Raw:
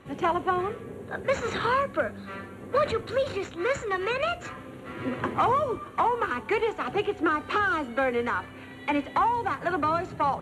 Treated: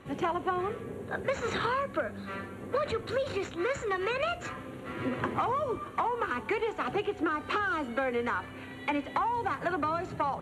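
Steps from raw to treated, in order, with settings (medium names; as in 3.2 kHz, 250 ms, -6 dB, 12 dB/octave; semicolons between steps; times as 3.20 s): compression 4:1, threshold -27 dBFS, peak gain reduction 7.5 dB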